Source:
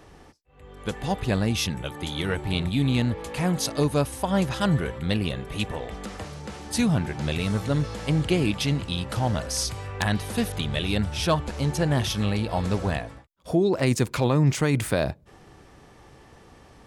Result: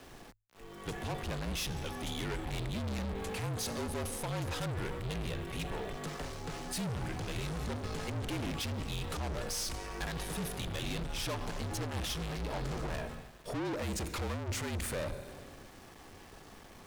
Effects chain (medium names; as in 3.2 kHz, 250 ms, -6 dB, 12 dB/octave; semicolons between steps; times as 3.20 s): Schroeder reverb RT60 1.8 s, combs from 29 ms, DRR 17 dB; valve stage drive 34 dB, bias 0.3; small samples zeroed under -51.5 dBFS; hum notches 50/100/150 Hz; frequency shift -45 Hz